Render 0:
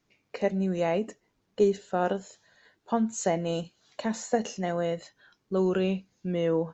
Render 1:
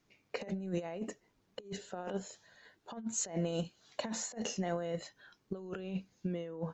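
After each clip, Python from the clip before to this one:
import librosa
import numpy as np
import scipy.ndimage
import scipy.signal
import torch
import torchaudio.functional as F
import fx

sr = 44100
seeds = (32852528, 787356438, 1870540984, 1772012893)

y = fx.over_compress(x, sr, threshold_db=-31.0, ratio=-0.5)
y = F.gain(torch.from_numpy(y), -5.5).numpy()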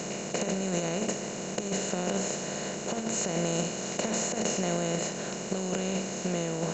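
y = fx.bin_compress(x, sr, power=0.2)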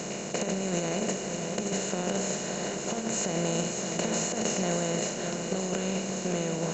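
y = x + 10.0 ** (-7.0 / 20.0) * np.pad(x, (int(572 * sr / 1000.0), 0))[:len(x)]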